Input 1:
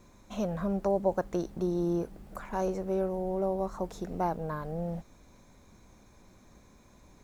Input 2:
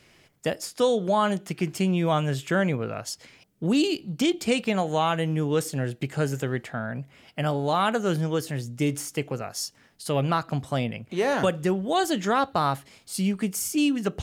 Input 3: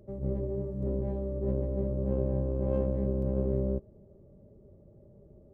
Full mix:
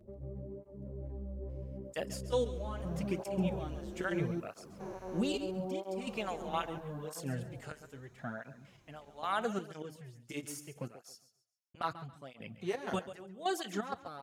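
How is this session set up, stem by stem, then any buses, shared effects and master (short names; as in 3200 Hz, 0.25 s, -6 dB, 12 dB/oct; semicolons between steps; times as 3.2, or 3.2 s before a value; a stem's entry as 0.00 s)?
-4.5 dB, 2.40 s, no send, no echo send, stepped spectrum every 0.4 s
-7.5 dB, 1.50 s, muted 11.22–11.75, no send, echo send -14 dB, step gate "...xxx.x." 128 bpm -12 dB
-1.5 dB, 0.00 s, no send, echo send -5 dB, compressor 2:1, threshold -47 dBFS, peak gain reduction 13 dB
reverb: off
echo: feedback echo 0.137 s, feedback 27%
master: tape flanging out of phase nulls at 0.77 Hz, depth 7.5 ms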